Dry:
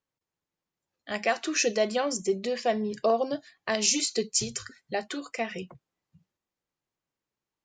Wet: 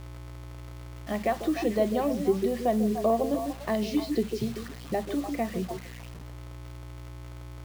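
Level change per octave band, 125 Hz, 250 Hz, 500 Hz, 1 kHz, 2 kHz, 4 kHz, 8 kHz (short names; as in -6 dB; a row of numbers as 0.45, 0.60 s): +9.0, +6.0, +0.5, +0.5, -7.0, -11.0, -16.5 dB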